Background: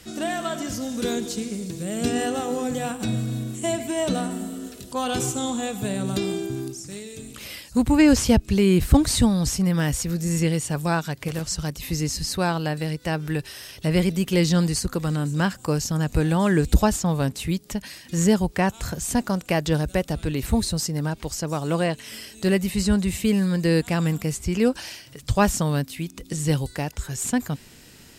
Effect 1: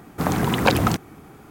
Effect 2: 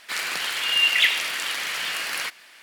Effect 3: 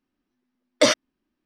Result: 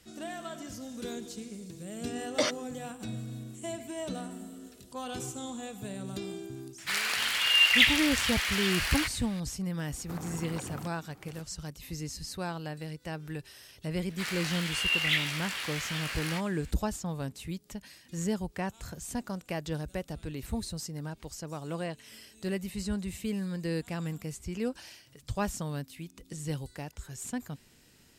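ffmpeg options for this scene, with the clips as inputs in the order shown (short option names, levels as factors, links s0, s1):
-filter_complex "[2:a]asplit=2[s0][s1];[0:a]volume=0.237[s2];[s0]lowshelf=f=360:g=-10.5[s3];[1:a]acompressor=threshold=0.0501:ratio=6:attack=3.2:release=140:knee=1:detection=peak[s4];[s1]flanger=delay=15.5:depth=6.4:speed=1.6[s5];[3:a]atrim=end=1.45,asetpts=PTS-STARTPTS,volume=0.299,afade=t=in:d=0.004:c=hsin,afade=t=out:st=1.446:d=0.004:c=hsin,adelay=1570[s6];[s3]atrim=end=2.62,asetpts=PTS-STARTPTS,volume=0.794,afade=t=in:d=0.004:c=hsin,afade=t=out:st=2.616:d=0.004:c=hsin,adelay=6780[s7];[s4]atrim=end=1.5,asetpts=PTS-STARTPTS,volume=0.266,afade=t=in:d=0.004:c=hsin,afade=t=out:st=1.496:d=0.004:c=hsin,adelay=9910[s8];[s5]atrim=end=2.62,asetpts=PTS-STARTPTS,volume=0.531,afade=t=in:d=0.004:c=hsin,afade=t=out:st=2.616:d=0.004:c=hsin,adelay=14090[s9];[s2][s6][s7][s8][s9]amix=inputs=5:normalize=0"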